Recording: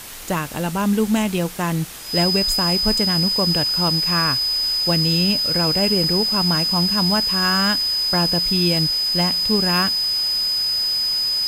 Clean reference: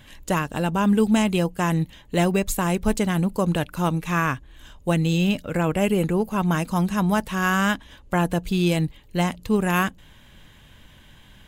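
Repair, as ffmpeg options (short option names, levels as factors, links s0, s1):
-af "bandreject=f=5000:w=30,afwtdn=0.018"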